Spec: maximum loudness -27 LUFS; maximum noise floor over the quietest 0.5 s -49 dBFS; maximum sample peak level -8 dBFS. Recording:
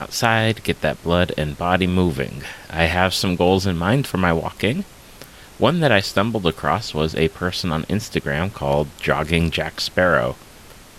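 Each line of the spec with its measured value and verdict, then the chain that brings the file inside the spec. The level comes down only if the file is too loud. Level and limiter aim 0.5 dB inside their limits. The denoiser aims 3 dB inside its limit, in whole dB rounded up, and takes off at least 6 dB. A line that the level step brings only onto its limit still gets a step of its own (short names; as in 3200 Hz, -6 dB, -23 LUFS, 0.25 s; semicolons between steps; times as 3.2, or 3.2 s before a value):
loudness -20.0 LUFS: fail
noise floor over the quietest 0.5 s -43 dBFS: fail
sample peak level -2.0 dBFS: fail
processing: gain -7.5 dB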